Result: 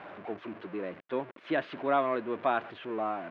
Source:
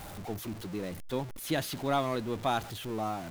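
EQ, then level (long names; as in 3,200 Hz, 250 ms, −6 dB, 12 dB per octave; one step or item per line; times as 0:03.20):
loudspeaker in its box 430–2,200 Hz, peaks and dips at 490 Hz −4 dB, 820 Hz −9 dB, 1,300 Hz −4 dB, 2,000 Hz −5 dB
+7.5 dB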